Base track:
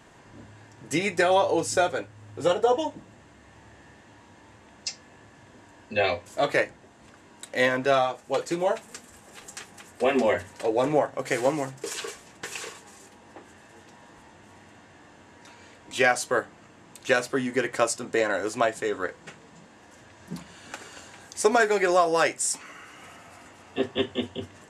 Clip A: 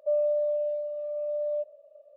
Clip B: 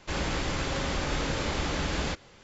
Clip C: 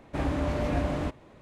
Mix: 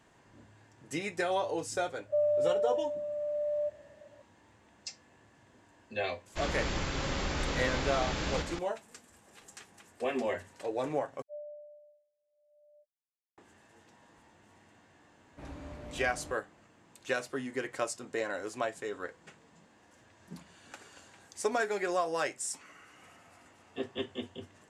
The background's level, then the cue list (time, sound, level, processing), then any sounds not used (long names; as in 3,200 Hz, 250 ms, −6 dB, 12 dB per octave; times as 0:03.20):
base track −10 dB
0:02.06: mix in A −2.5 dB
0:06.28: mix in B −4.5 dB, fades 0.10 s + delay that plays each chunk backwards 330 ms, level −5.5 dB
0:11.22: overwrite with A −17.5 dB + every bin expanded away from the loudest bin 4 to 1
0:15.24: mix in C −17 dB